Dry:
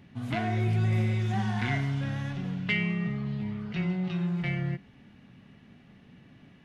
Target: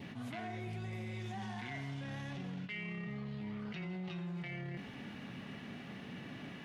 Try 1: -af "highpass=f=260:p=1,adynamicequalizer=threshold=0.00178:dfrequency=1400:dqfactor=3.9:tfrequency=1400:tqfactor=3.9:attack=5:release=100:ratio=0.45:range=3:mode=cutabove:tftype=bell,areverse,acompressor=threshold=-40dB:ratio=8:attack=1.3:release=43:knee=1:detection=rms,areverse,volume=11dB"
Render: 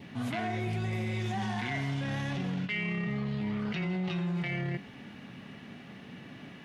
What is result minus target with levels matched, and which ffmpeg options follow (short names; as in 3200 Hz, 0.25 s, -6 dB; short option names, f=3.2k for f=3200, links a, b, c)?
compressor: peak gain reduction -9.5 dB
-af "highpass=f=260:p=1,adynamicequalizer=threshold=0.00178:dfrequency=1400:dqfactor=3.9:tfrequency=1400:tqfactor=3.9:attack=5:release=100:ratio=0.45:range=3:mode=cutabove:tftype=bell,areverse,acompressor=threshold=-51dB:ratio=8:attack=1.3:release=43:knee=1:detection=rms,areverse,volume=11dB"